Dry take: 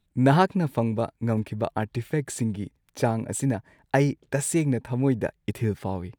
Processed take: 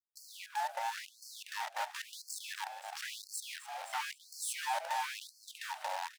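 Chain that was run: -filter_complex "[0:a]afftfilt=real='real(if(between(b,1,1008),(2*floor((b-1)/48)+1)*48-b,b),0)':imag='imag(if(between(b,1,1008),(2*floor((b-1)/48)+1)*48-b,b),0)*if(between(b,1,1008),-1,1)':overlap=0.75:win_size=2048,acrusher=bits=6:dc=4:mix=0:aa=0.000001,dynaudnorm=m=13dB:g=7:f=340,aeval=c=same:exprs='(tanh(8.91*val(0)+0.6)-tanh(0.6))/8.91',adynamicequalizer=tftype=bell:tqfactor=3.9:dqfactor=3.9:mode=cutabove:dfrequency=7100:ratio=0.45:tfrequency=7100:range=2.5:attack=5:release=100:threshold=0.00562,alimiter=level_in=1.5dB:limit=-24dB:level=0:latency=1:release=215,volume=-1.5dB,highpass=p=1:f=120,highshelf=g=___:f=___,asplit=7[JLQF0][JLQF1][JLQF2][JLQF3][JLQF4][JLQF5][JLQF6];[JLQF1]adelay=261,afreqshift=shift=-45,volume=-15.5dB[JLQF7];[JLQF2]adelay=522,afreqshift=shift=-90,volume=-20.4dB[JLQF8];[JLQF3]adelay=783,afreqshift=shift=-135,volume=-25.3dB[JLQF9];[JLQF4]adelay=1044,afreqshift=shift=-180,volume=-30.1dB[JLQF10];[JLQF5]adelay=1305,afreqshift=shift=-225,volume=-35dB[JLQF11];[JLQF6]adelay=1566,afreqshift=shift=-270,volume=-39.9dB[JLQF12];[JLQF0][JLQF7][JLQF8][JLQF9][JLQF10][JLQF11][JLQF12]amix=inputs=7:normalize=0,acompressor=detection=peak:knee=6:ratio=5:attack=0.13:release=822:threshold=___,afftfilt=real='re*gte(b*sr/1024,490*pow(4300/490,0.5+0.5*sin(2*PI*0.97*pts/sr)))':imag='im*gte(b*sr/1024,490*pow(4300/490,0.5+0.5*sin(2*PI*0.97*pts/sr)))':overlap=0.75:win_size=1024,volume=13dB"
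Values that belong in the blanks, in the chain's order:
-11, 9600, -42dB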